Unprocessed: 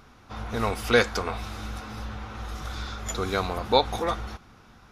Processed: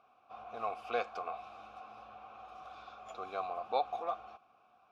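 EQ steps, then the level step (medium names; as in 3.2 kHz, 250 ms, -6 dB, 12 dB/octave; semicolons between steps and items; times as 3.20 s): vowel filter a; -1.0 dB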